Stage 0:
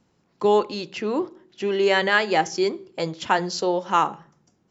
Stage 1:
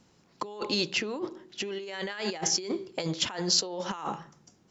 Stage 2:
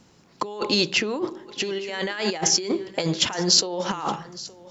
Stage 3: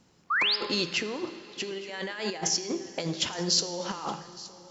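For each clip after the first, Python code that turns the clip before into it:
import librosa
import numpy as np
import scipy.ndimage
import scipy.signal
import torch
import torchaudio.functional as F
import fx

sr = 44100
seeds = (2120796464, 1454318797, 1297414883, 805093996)

y1 = fx.over_compress(x, sr, threshold_db=-30.0, ratio=-1.0)
y1 = fx.peak_eq(y1, sr, hz=5700.0, db=6.0, octaves=2.2)
y1 = y1 * librosa.db_to_amplitude(-4.5)
y2 = y1 + 10.0 ** (-19.0 / 20.0) * np.pad(y1, (int(869 * sr / 1000.0), 0))[:len(y1)]
y2 = y2 * librosa.db_to_amplitude(7.0)
y3 = fx.spec_paint(y2, sr, seeds[0], shape='rise', start_s=0.3, length_s=0.26, low_hz=1100.0, high_hz=5400.0, level_db=-18.0)
y3 = fx.comb_fb(y3, sr, f0_hz=86.0, decay_s=1.2, harmonics='all', damping=0.0, mix_pct=60)
y3 = fx.rev_plate(y3, sr, seeds[1], rt60_s=4.2, hf_ratio=0.95, predelay_ms=0, drr_db=15.5)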